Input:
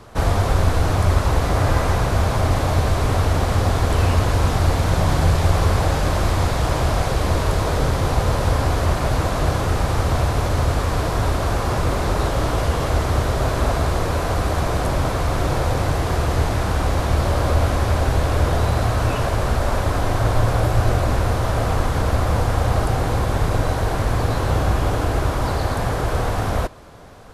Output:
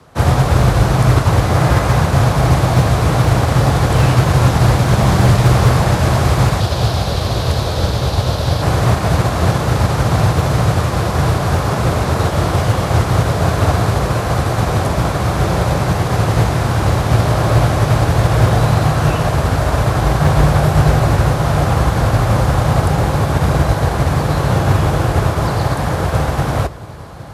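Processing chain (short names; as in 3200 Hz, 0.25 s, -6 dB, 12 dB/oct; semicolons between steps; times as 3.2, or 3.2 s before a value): 6.6–8.62 graphic EQ 125/250/1000/2000/4000/8000 Hz -6/-3/-4/-6/+8/-5 dB; diffused feedback echo 1.566 s, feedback 55%, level -12.5 dB; frequency shift +37 Hz; wavefolder -9.5 dBFS; upward expander 1.5:1, over -32 dBFS; gain +7 dB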